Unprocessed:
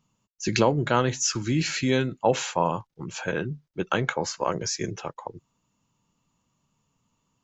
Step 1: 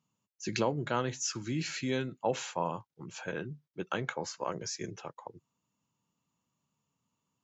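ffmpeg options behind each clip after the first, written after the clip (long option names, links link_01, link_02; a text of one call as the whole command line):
ffmpeg -i in.wav -af "highpass=96,volume=-9dB" out.wav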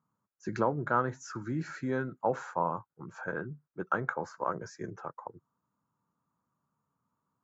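ffmpeg -i in.wav -af "highshelf=frequency=2000:width_type=q:width=3:gain=-12.5" out.wav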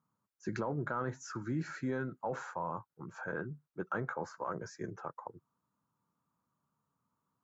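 ffmpeg -i in.wav -af "alimiter=level_in=0.5dB:limit=-24dB:level=0:latency=1:release=11,volume=-0.5dB,volume=-1.5dB" out.wav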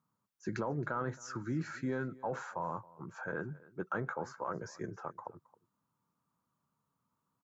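ffmpeg -i in.wav -af "aecho=1:1:270:0.0841" out.wav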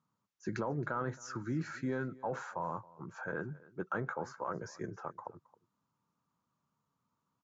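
ffmpeg -i in.wav -af "aresample=16000,aresample=44100" out.wav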